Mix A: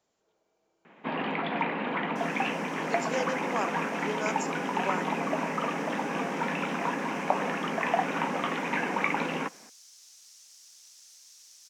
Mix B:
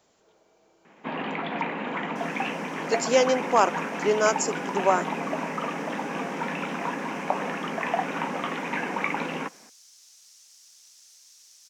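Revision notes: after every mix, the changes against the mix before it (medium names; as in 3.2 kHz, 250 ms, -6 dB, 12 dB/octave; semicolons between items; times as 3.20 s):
speech +12.0 dB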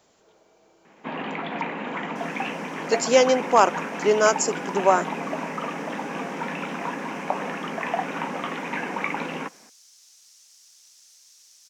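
speech +3.5 dB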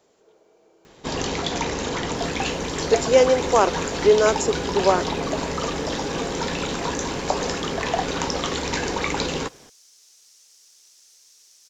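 speech -3.5 dB; first sound: remove elliptic band-pass 190–2500 Hz, stop band 40 dB; master: add peaking EQ 420 Hz +8.5 dB 0.85 oct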